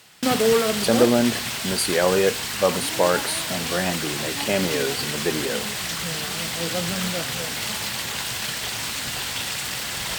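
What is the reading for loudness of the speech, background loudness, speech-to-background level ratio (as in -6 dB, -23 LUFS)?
-24.0 LUFS, -25.0 LUFS, 1.0 dB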